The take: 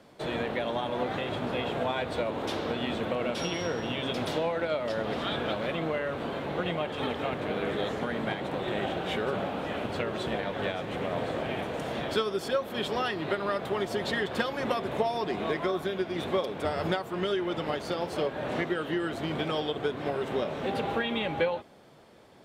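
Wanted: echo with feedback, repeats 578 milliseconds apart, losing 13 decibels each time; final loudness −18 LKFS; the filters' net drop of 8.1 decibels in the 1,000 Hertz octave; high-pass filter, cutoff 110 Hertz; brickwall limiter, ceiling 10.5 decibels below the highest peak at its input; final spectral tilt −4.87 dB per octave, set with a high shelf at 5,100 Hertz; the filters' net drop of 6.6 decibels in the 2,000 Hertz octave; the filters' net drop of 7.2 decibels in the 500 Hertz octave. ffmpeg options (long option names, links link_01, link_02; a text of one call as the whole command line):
ffmpeg -i in.wav -af "highpass=110,equalizer=frequency=500:width_type=o:gain=-7,equalizer=frequency=1000:width_type=o:gain=-7,equalizer=frequency=2000:width_type=o:gain=-6.5,highshelf=frequency=5100:gain=5,alimiter=level_in=4.5dB:limit=-24dB:level=0:latency=1,volume=-4.5dB,aecho=1:1:578|1156|1734:0.224|0.0493|0.0108,volume=20dB" out.wav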